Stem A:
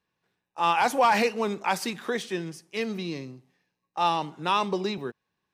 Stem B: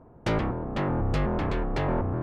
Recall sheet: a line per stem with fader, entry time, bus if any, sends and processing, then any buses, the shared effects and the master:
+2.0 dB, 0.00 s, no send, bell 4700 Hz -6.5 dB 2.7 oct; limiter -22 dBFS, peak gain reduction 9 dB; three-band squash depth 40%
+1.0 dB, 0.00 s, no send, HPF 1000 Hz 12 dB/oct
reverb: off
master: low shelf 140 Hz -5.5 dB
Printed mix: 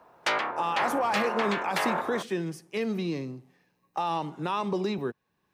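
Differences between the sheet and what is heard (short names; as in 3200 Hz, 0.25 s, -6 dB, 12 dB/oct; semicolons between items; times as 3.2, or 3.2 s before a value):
stem B +1.0 dB -> +8.0 dB; master: missing low shelf 140 Hz -5.5 dB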